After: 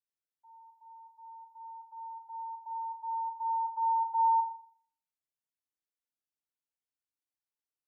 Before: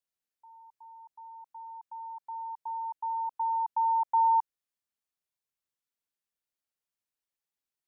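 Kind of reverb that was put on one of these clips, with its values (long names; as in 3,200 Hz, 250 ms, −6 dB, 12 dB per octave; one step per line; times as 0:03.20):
feedback delay network reverb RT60 0.5 s, low-frequency decay 1.35×, high-frequency decay 0.75×, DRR −5 dB
level −15 dB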